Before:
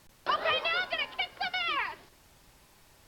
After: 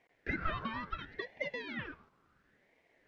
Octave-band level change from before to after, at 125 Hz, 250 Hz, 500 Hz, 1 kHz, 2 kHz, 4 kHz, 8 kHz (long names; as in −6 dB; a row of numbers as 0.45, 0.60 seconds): +9.5 dB, +8.0 dB, −7.5 dB, −10.0 dB, −9.0 dB, −18.0 dB, can't be measured